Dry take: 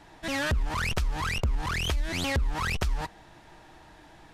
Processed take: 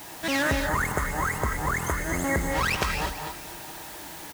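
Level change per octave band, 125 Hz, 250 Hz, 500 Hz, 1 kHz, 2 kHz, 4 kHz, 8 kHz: -0.5 dB, +5.5 dB, +6.5 dB, +6.0 dB, +5.0 dB, -0.5 dB, +6.5 dB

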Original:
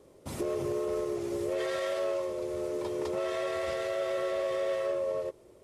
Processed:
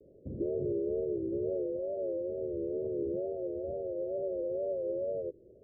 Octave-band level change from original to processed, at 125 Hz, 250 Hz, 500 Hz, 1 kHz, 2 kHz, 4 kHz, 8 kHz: 0.0 dB, 0.0 dB, -2.5 dB, under -15 dB, under -40 dB, under -40 dB, under -30 dB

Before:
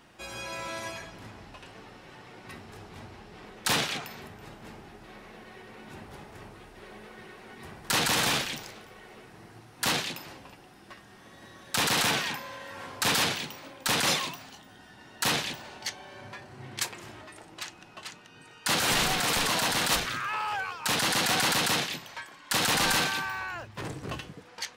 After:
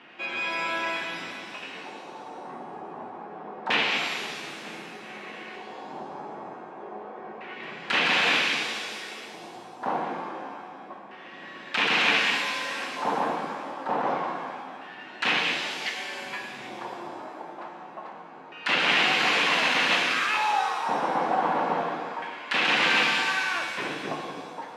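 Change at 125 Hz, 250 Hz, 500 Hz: -7.0 dB, +1.0 dB, +4.5 dB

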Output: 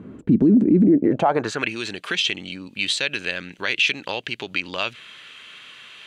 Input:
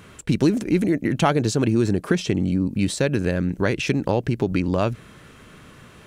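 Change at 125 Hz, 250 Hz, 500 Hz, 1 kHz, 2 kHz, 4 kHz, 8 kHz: -6.0 dB, +1.0 dB, -2.5 dB, +1.0 dB, +6.0 dB, +9.5 dB, -2.0 dB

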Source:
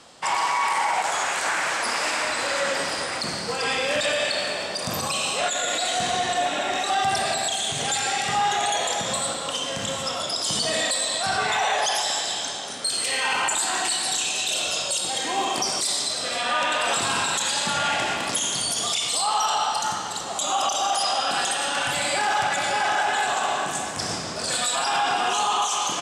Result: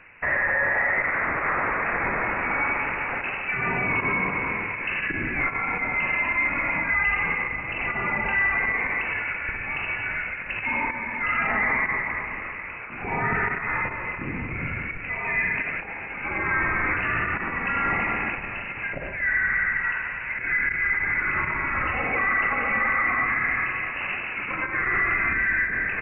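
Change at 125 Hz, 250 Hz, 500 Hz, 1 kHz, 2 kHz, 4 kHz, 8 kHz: +4.5 dB, +2.0 dB, -6.0 dB, -5.5 dB, +6.0 dB, -24.5 dB, under -40 dB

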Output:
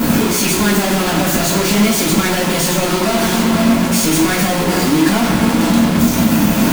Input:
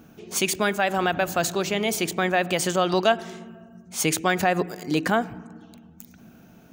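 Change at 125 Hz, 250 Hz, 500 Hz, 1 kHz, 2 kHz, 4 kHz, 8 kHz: +15.0 dB, +16.5 dB, +7.0 dB, +7.0 dB, +7.5 dB, +11.5 dB, +12.0 dB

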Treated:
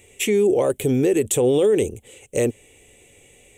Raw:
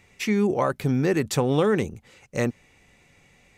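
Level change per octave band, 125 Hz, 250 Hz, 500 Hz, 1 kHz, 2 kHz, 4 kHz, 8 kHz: -1.5 dB, +1.5 dB, +6.5 dB, -5.0 dB, -1.0 dB, +3.5 dB, +10.0 dB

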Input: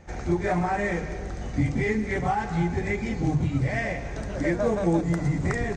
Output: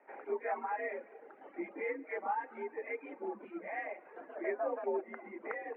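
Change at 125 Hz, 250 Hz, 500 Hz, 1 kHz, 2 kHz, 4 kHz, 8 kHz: under -40 dB, -20.5 dB, -9.0 dB, -9.0 dB, -11.5 dB, under -25 dB, under -35 dB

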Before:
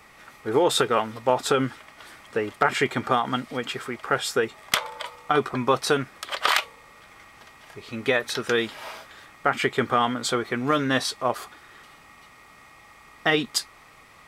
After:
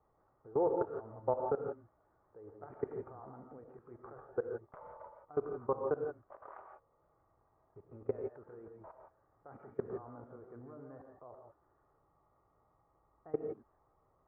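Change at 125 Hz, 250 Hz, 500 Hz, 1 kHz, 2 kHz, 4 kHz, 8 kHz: -17.0 dB, -17.5 dB, -12.0 dB, -19.5 dB, -33.5 dB, under -40 dB, under -40 dB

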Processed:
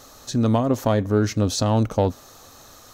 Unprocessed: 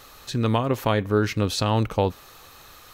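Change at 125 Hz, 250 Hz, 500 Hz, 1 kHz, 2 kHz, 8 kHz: +2.5 dB, +4.0 dB, +2.0 dB, -0.5 dB, -4.5 dB, +5.5 dB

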